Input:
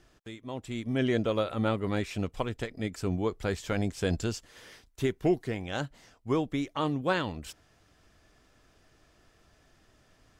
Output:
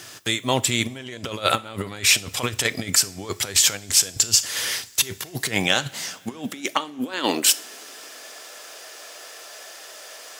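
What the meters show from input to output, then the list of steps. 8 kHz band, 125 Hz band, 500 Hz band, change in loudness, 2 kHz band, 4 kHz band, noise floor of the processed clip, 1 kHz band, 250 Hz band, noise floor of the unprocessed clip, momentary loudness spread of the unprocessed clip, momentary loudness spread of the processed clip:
+28.0 dB, 0.0 dB, +0.5 dB, +10.0 dB, +12.0 dB, +20.0 dB, −43 dBFS, +7.5 dB, 0.0 dB, −65 dBFS, 14 LU, 21 LU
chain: high-pass filter sweep 100 Hz → 520 Hz, 0:05.10–0:08.35
compressor whose output falls as the input rises −33 dBFS, ratio −0.5
spectral tilt +4 dB per octave
coupled-rooms reverb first 0.41 s, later 5 s, from −22 dB, DRR 15.5 dB
boost into a limiter +15 dB
level −2.5 dB

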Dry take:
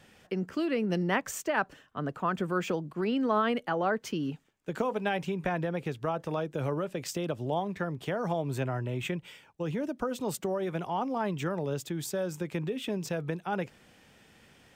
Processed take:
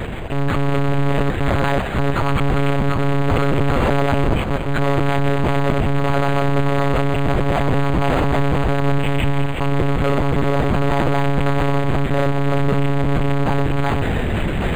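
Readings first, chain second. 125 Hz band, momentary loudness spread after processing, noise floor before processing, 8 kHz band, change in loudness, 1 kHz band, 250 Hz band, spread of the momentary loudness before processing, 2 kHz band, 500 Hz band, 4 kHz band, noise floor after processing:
+18.5 dB, 2 LU, −60 dBFS, +2.0 dB, +13.0 dB, +12.0 dB, +12.0 dB, 6 LU, +12.0 dB, +11.5 dB, +12.0 dB, −21 dBFS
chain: delay that plays each chunk backwards 326 ms, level −4 dB
low-shelf EQ 400 Hz +12 dB
sample-and-hold tremolo
fuzz pedal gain 59 dB, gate −59 dBFS
on a send: delay that swaps between a low-pass and a high-pass 107 ms, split 1,500 Hz, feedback 87%, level −10 dB
on the sum: transient designer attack −4 dB, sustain 0 dB
one-pitch LPC vocoder at 8 kHz 140 Hz
linearly interpolated sample-rate reduction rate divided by 8×
level −2.5 dB

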